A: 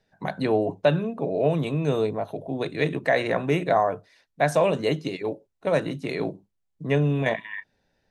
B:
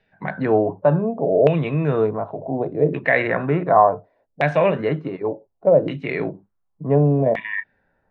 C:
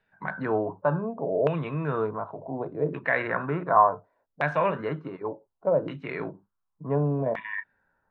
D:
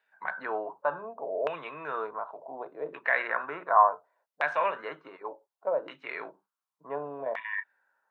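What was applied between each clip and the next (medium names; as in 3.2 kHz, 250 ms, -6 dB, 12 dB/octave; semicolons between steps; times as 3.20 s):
harmonic-percussive split harmonic +6 dB; LFO low-pass saw down 0.68 Hz 530–2700 Hz; trim -1 dB
high-order bell 1.2 kHz +9 dB 1 oct; trim -9 dB
high-pass 700 Hz 12 dB/octave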